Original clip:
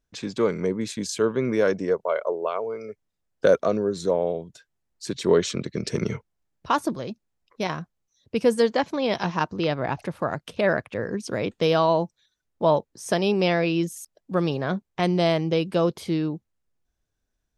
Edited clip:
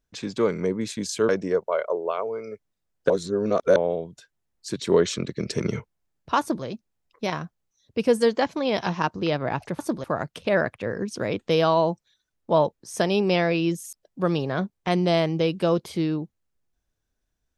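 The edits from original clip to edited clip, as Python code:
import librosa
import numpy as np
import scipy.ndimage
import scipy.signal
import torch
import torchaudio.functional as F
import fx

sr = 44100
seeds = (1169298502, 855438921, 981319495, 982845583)

y = fx.edit(x, sr, fx.cut(start_s=1.29, length_s=0.37),
    fx.reverse_span(start_s=3.47, length_s=0.66),
    fx.duplicate(start_s=6.77, length_s=0.25, to_s=10.16), tone=tone)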